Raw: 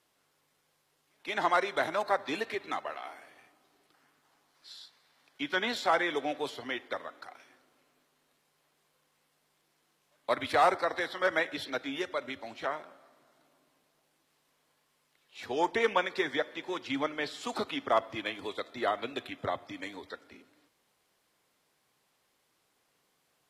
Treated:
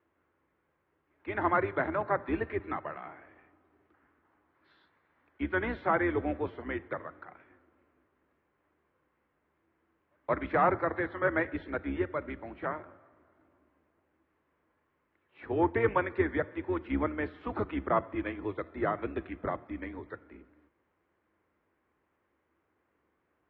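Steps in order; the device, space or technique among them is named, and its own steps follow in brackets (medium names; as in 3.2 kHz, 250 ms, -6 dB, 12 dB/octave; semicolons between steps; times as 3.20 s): sub-octave bass pedal (octave divider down 2 oct, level +3 dB; cabinet simulation 81–2000 Hz, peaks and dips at 130 Hz -7 dB, 330 Hz +8 dB, 740 Hz -4 dB)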